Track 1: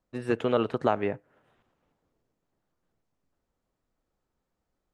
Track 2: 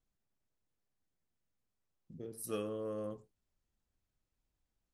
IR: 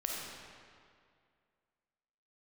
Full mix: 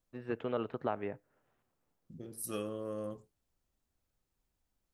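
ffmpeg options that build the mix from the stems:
-filter_complex "[0:a]lowpass=3100,volume=-10dB[link_01];[1:a]highshelf=frequency=6400:gain=4,bandreject=frequency=450:width=13,volume=1dB[link_02];[link_01][link_02]amix=inputs=2:normalize=0"

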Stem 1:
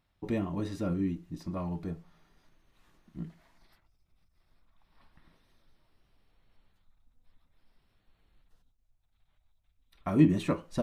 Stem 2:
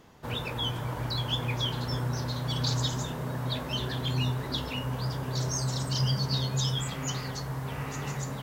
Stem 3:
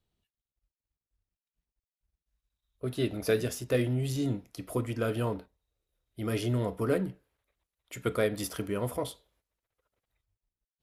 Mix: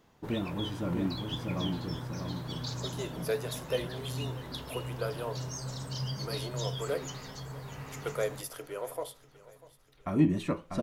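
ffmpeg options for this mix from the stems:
ffmpeg -i stem1.wav -i stem2.wav -i stem3.wav -filter_complex "[0:a]acontrast=53,volume=-8dB,asplit=2[link_01][link_02];[link_02]volume=-5dB[link_03];[1:a]volume=-8.5dB,asplit=2[link_04][link_05];[link_05]volume=-14dB[link_06];[2:a]highpass=frequency=450:width=0.5412,highpass=frequency=450:width=1.3066,equalizer=frequency=3300:width=0.31:gain=-6,volume=0dB,asplit=2[link_07][link_08];[link_08]volume=-20dB[link_09];[link_03][link_06][link_09]amix=inputs=3:normalize=0,aecho=0:1:644|1288|1932|2576|3220|3864:1|0.45|0.202|0.0911|0.041|0.0185[link_10];[link_01][link_04][link_07][link_10]amix=inputs=4:normalize=0" out.wav

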